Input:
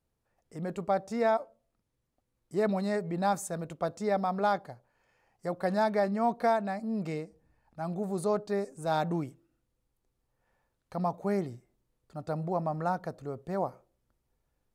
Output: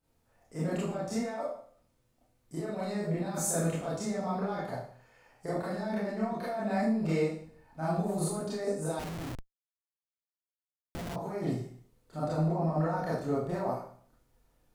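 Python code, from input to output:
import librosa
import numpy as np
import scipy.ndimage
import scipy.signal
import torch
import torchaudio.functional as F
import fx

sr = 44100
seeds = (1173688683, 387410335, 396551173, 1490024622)

y = fx.over_compress(x, sr, threshold_db=-35.0, ratio=-1.0)
y = fx.rev_schroeder(y, sr, rt60_s=0.53, comb_ms=25, drr_db=-9.5)
y = fx.schmitt(y, sr, flips_db=-28.5, at=(8.99, 11.16))
y = F.gain(torch.from_numpy(y), -5.5).numpy()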